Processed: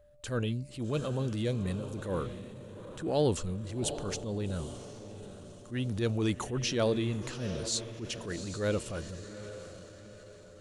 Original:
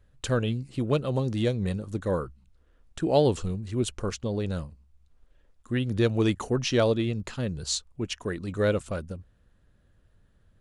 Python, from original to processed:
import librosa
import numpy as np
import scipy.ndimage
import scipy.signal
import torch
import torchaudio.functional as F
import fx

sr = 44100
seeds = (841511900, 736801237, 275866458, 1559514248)

y = x + 10.0 ** (-55.0 / 20.0) * np.sin(2.0 * np.pi * 590.0 * np.arange(len(x)) / sr)
y = fx.echo_diffused(y, sr, ms=785, feedback_pct=46, wet_db=-13.0)
y = fx.transient(y, sr, attack_db=-8, sustain_db=3)
y = fx.high_shelf(y, sr, hz=6400.0, db=7.0)
y = F.gain(torch.from_numpy(y), -4.5).numpy()